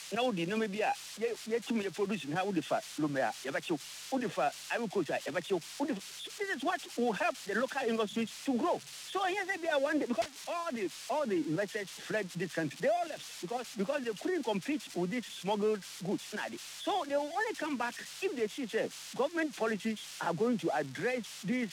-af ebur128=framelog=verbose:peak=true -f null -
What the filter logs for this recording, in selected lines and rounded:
Integrated loudness:
  I:         -34.7 LUFS
  Threshold: -44.7 LUFS
Loudness range:
  LRA:         1.7 LU
  Threshold: -54.8 LUFS
  LRA low:   -35.5 LUFS
  LRA high:  -33.7 LUFS
True peak:
  Peak:      -21.4 dBFS